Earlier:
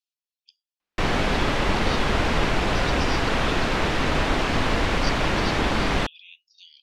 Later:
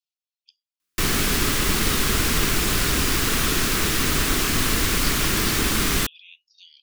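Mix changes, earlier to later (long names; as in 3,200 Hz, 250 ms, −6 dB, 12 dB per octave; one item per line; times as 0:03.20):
background: remove low-pass filter 3,100 Hz 12 dB per octave
master: add flat-topped bell 690 Hz −9.5 dB 1.1 octaves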